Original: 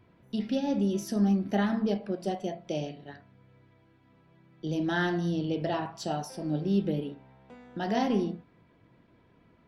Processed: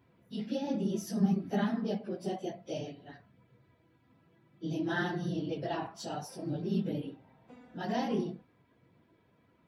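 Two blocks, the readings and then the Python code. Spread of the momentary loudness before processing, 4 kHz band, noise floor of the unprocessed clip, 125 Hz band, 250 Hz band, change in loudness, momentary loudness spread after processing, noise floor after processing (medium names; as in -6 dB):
13 LU, -4.5 dB, -63 dBFS, -4.0 dB, -4.5 dB, -4.5 dB, 12 LU, -69 dBFS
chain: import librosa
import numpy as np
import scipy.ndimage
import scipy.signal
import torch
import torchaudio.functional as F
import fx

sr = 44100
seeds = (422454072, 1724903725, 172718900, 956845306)

y = fx.phase_scramble(x, sr, seeds[0], window_ms=50)
y = scipy.signal.sosfilt(scipy.signal.butter(2, 68.0, 'highpass', fs=sr, output='sos'), y)
y = fx.high_shelf(y, sr, hz=8200.0, db=4.5)
y = F.gain(torch.from_numpy(y), -5.0).numpy()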